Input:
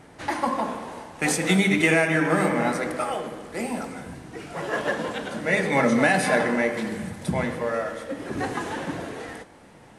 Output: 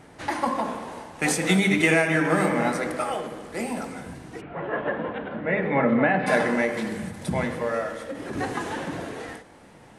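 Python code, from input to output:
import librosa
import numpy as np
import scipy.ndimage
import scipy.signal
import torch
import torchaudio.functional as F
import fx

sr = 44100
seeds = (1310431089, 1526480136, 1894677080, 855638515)

y = fx.bessel_lowpass(x, sr, hz=1800.0, order=8, at=(4.4, 6.26), fade=0.02)
y = fx.end_taper(y, sr, db_per_s=120.0)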